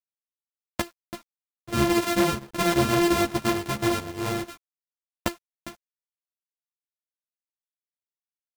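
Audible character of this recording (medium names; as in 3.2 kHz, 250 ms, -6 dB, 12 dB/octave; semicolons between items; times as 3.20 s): a buzz of ramps at a fixed pitch in blocks of 128 samples; chopped level 2.9 Hz, depth 60%, duty 90%; a quantiser's noise floor 8-bit, dither none; a shimmering, thickened sound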